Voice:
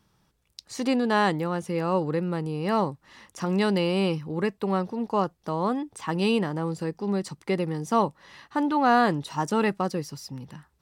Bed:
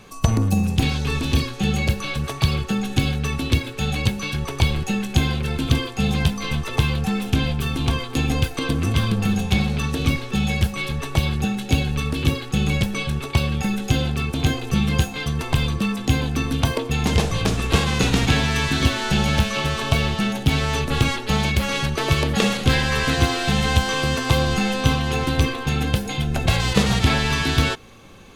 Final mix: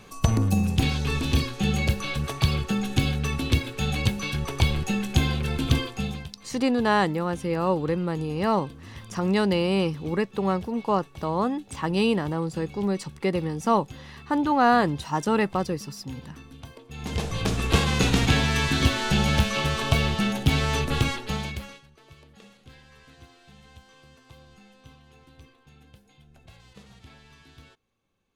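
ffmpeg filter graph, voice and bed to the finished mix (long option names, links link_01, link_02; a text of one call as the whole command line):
ffmpeg -i stem1.wav -i stem2.wav -filter_complex "[0:a]adelay=5750,volume=1dB[link_01];[1:a]volume=17.5dB,afade=type=out:start_time=5.78:duration=0.5:silence=0.1,afade=type=in:start_time=16.87:duration=0.81:silence=0.0944061,afade=type=out:start_time=20.81:duration=1:silence=0.0334965[link_02];[link_01][link_02]amix=inputs=2:normalize=0" out.wav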